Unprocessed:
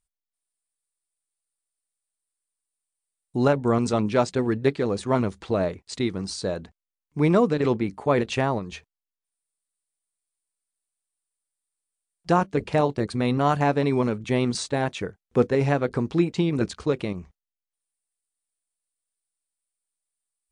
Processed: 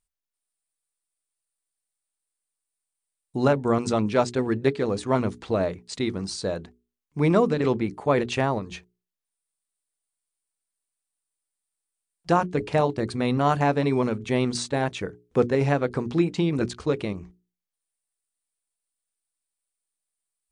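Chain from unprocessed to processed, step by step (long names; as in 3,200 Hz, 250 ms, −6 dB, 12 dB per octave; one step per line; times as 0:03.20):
mains-hum notches 60/120/180/240/300/360/420 Hz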